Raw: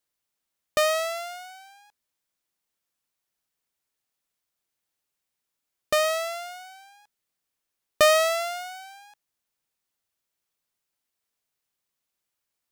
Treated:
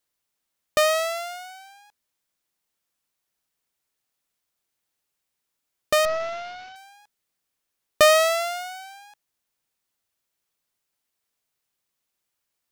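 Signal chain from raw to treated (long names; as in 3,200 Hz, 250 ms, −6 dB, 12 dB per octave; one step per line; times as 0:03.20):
0:06.05–0:06.76: variable-slope delta modulation 32 kbit/s
level +2.5 dB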